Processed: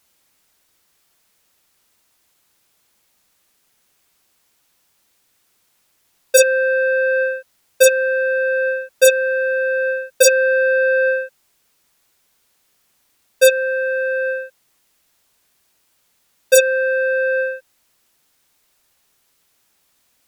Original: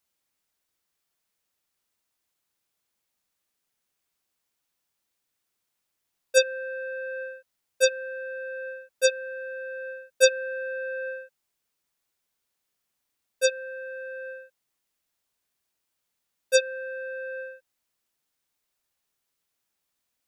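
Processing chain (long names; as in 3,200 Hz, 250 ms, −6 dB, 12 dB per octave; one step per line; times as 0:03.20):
sine wavefolder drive 13 dB, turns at −6 dBFS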